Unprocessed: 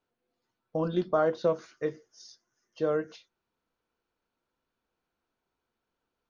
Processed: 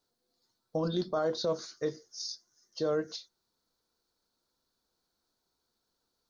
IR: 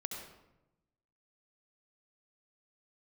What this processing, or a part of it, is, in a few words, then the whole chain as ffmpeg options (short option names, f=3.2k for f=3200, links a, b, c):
over-bright horn tweeter: -af "highshelf=f=3.4k:t=q:w=3:g=8,alimiter=limit=-22dB:level=0:latency=1:release=23"